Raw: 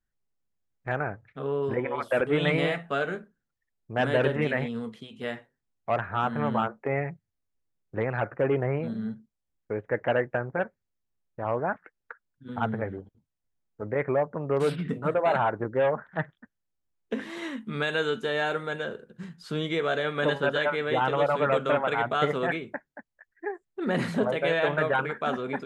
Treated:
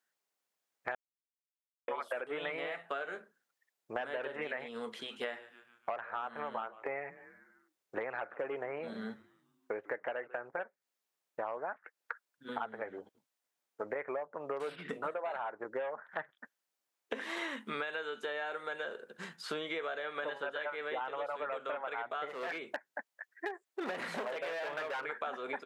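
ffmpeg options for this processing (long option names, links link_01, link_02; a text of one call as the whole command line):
ffmpeg -i in.wav -filter_complex "[0:a]asplit=3[link_01][link_02][link_03];[link_01]afade=type=out:start_time=4.98:duration=0.02[link_04];[link_02]asplit=5[link_05][link_06][link_07][link_08][link_09];[link_06]adelay=146,afreqshift=-120,volume=-23dB[link_10];[link_07]adelay=292,afreqshift=-240,volume=-28.5dB[link_11];[link_08]adelay=438,afreqshift=-360,volume=-34dB[link_12];[link_09]adelay=584,afreqshift=-480,volume=-39.5dB[link_13];[link_05][link_10][link_11][link_12][link_13]amix=inputs=5:normalize=0,afade=type=in:start_time=4.98:duration=0.02,afade=type=out:start_time=10.46:duration=0.02[link_14];[link_03]afade=type=in:start_time=10.46:duration=0.02[link_15];[link_04][link_14][link_15]amix=inputs=3:normalize=0,asettb=1/sr,asplit=3[link_16][link_17][link_18];[link_16]atrim=end=22.294[link_19];[link_17]atrim=start=22.29:end=25.05,asetpts=PTS-STARTPTS,afade=type=in:duration=0.004:curve=qsin,afade=type=out:start_time=2.756:duration=0.004:curve=qsin,volume=27.5dB,asoftclip=hard,volume=-27.5dB[link_20];[link_18]atrim=start=25.046[link_21];[link_19][link_20]acrossfade=duration=0.004:curve1=hsin:curve2=qsin[link_22];[link_22][link_21]acrossfade=duration=0.004:curve1=qsin:curve2=hsin,asplit=3[link_23][link_24][link_25];[link_23]atrim=end=0.95,asetpts=PTS-STARTPTS,afade=type=out:start_time=0.946:duration=0.004:curve=hsin[link_26];[link_24]atrim=start=0.95:end=1.88,asetpts=PTS-STARTPTS,volume=0[link_27];[link_25]atrim=start=1.88,asetpts=PTS-STARTPTS,afade=type=in:duration=0.004:curve=hsin[link_28];[link_26][link_27][link_28]concat=n=3:v=0:a=1,acrossover=split=3100[link_29][link_30];[link_30]acompressor=threshold=-50dB:ratio=4:attack=1:release=60[link_31];[link_29][link_31]amix=inputs=2:normalize=0,highpass=540,acompressor=threshold=-41dB:ratio=16,volume=6.5dB" out.wav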